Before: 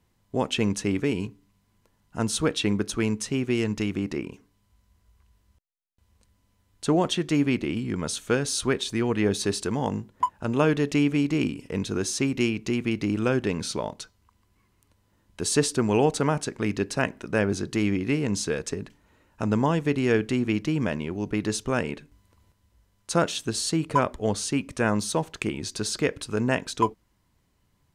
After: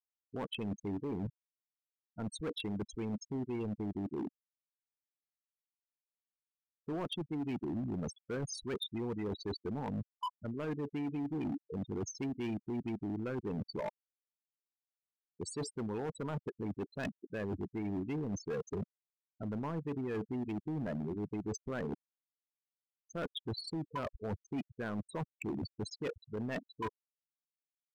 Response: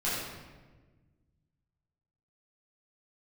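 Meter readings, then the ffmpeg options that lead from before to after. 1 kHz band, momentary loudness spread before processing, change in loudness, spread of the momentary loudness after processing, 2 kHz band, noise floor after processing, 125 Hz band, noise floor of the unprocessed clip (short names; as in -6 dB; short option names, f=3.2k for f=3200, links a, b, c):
-15.0 dB, 8 LU, -13.5 dB, 5 LU, -17.5 dB, under -85 dBFS, -12.0 dB, -69 dBFS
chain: -af "afftfilt=real='re*gte(hypot(re,im),0.112)':imag='im*gte(hypot(re,im),0.112)':win_size=1024:overlap=0.75,areverse,acompressor=threshold=-35dB:ratio=16,areverse,volume=36dB,asoftclip=hard,volume=-36dB,volume=3dB"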